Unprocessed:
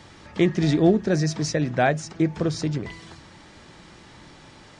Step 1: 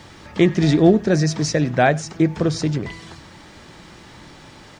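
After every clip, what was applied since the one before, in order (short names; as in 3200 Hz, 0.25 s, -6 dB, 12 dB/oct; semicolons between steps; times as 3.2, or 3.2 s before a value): bit-crush 12-bit; echo 96 ms -24 dB; gain +4.5 dB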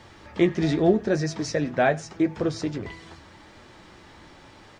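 bell 160 Hz -6 dB 1.1 oct; flange 0.83 Hz, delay 8.1 ms, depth 4.6 ms, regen -49%; high shelf 3600 Hz -6.5 dB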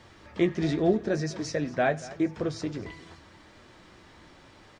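notch 850 Hz, Q 17; echo 0.233 s -18.5 dB; gain -4 dB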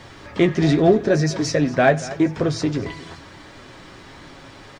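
comb 7.3 ms, depth 32%; in parallel at -8.5 dB: soft clip -28.5 dBFS, distortion -7 dB; on the sum: gain +8 dB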